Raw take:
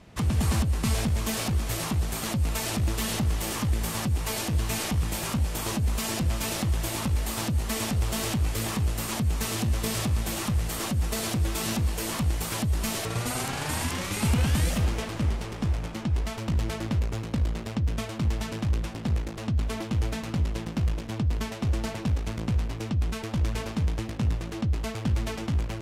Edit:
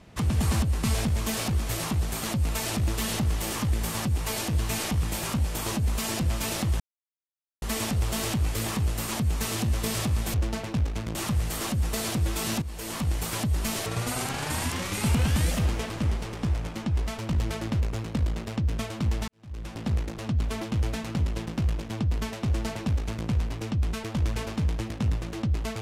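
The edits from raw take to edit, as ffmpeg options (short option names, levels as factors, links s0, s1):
-filter_complex "[0:a]asplit=7[s0][s1][s2][s3][s4][s5][s6];[s0]atrim=end=6.8,asetpts=PTS-STARTPTS,afade=t=out:st=6.796:d=0.004:c=hsin[s7];[s1]atrim=start=6.8:end=7.62,asetpts=PTS-STARTPTS,volume=0[s8];[s2]atrim=start=7.62:end=10.342,asetpts=PTS-STARTPTS,afade=t=in:d=0.004:c=hsin[s9];[s3]atrim=start=21.648:end=22.462[s10];[s4]atrim=start=10.338:end=11.81,asetpts=PTS-STARTPTS,afade=t=out:st=1.468:d=0.004:c=hsin:silence=0.211349[s11];[s5]atrim=start=11.81:end=18.47,asetpts=PTS-STARTPTS,afade=t=in:d=0.7:c=qsin:silence=0.211349,afade=t=out:st=6.656:d=0.004:c=hsin[s12];[s6]atrim=start=18.47,asetpts=PTS-STARTPTS,afade=t=in:d=0.51:c=qua[s13];[s7][s8][s9]concat=n=3:v=0:a=1[s14];[s14][s10]acrossfade=d=0.004:c1=hsin:c2=hsin[s15];[s11][s12][s13]concat=n=3:v=0:a=1[s16];[s15][s16]acrossfade=d=0.004:c1=hsin:c2=hsin"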